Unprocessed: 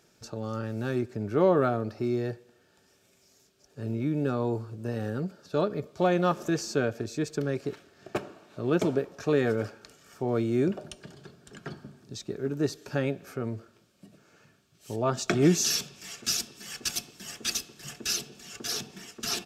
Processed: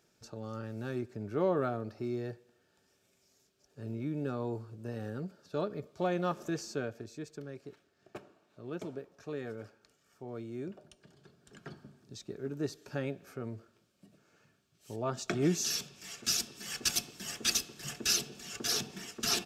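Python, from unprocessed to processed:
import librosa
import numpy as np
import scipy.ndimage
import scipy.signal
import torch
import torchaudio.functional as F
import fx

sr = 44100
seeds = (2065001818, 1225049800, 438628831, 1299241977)

y = fx.gain(x, sr, db=fx.line((6.59, -7.5), (7.48, -15.0), (10.95, -15.0), (11.56, -7.5), (15.55, -7.5), (16.76, 0.5)))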